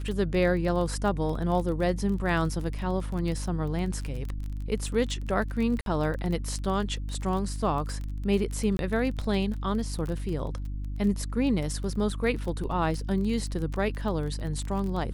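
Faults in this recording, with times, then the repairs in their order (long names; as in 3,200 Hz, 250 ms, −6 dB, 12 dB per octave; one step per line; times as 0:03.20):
surface crackle 22 per second −32 dBFS
mains hum 50 Hz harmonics 6 −33 dBFS
0:05.81–0:05.86: drop-out 52 ms
0:08.77–0:08.79: drop-out 21 ms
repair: click removal
hum removal 50 Hz, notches 6
repair the gap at 0:05.81, 52 ms
repair the gap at 0:08.77, 21 ms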